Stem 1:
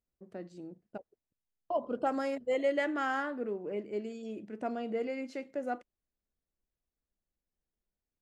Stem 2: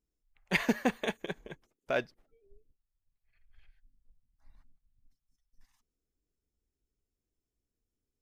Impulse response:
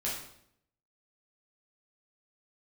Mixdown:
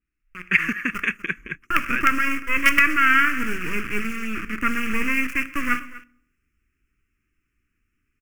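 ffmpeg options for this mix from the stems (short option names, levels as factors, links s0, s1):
-filter_complex "[0:a]dynaudnorm=f=140:g=11:m=3.55,acrusher=bits=3:dc=4:mix=0:aa=0.000001,volume=0.398,asplit=3[s0][s1][s2];[s1]volume=0.178[s3];[s2]volume=0.141[s4];[1:a]acompressor=threshold=0.00794:ratio=2.5,volume=1.41,asplit=2[s5][s6];[s6]volume=0.0708[s7];[2:a]atrim=start_sample=2205[s8];[s3][s8]afir=irnorm=-1:irlink=0[s9];[s4][s7]amix=inputs=2:normalize=0,aecho=0:1:245:1[s10];[s0][s5][s9][s10]amix=inputs=4:normalize=0,firequalizer=gain_entry='entry(310,0);entry(480,-15);entry(780,-29);entry(1200,9);entry(2600,13);entry(3800,-23);entry(5300,-8)':delay=0.05:min_phase=1,dynaudnorm=f=130:g=5:m=3.35,adynamicequalizer=threshold=0.02:dfrequency=4400:dqfactor=0.7:tfrequency=4400:tqfactor=0.7:attack=5:release=100:ratio=0.375:range=3.5:mode=boostabove:tftype=highshelf"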